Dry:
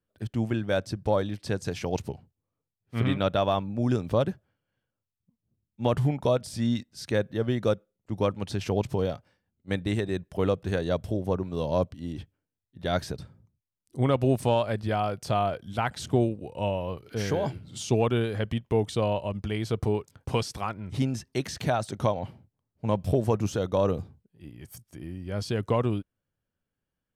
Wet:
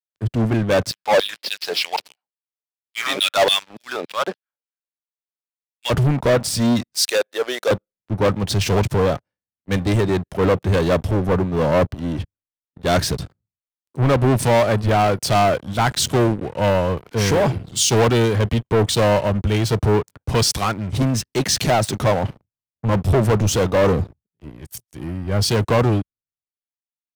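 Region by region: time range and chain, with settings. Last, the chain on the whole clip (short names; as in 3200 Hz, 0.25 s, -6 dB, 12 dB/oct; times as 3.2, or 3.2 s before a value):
0.91–5.9 LFO high-pass saw down 3.5 Hz 380–4300 Hz + careless resampling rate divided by 4×, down none, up filtered
6.93–7.71 HPF 480 Hz 24 dB/oct + high shelf 5800 Hz +6.5 dB
whole clip: sample leveller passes 5; three-band expander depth 70%; gain -2.5 dB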